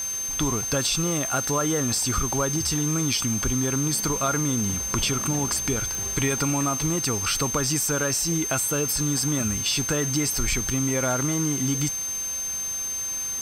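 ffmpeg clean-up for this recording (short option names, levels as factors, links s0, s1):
-af "adeclick=t=4,bandreject=f=6300:w=30,afwtdn=0.011"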